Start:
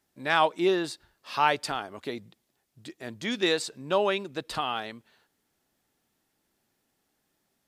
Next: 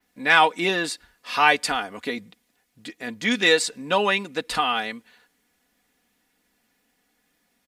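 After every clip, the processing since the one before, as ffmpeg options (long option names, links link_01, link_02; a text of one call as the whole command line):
ffmpeg -i in.wav -af "equalizer=frequency=2100:width=1.6:gain=6.5,aecho=1:1:4.1:0.64,adynamicequalizer=threshold=0.00562:dfrequency=8900:dqfactor=0.85:tfrequency=8900:tqfactor=0.85:attack=5:release=100:ratio=0.375:range=2.5:mode=boostabove:tftype=bell,volume=3.5dB" out.wav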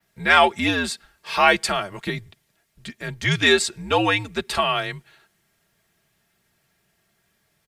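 ffmpeg -i in.wav -af "afreqshift=-88,volume=1.5dB" out.wav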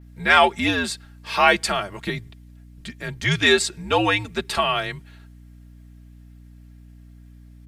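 ffmpeg -i in.wav -af "aeval=exprs='val(0)+0.00631*(sin(2*PI*60*n/s)+sin(2*PI*2*60*n/s)/2+sin(2*PI*3*60*n/s)/3+sin(2*PI*4*60*n/s)/4+sin(2*PI*5*60*n/s)/5)':channel_layout=same" out.wav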